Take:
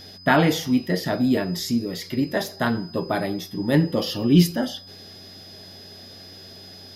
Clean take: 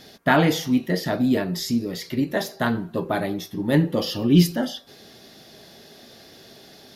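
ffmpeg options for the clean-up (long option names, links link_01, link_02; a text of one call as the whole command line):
ffmpeg -i in.wav -af "bandreject=frequency=92.6:width_type=h:width=4,bandreject=frequency=185.2:width_type=h:width=4,bandreject=frequency=277.8:width_type=h:width=4,bandreject=frequency=5000:width=30" out.wav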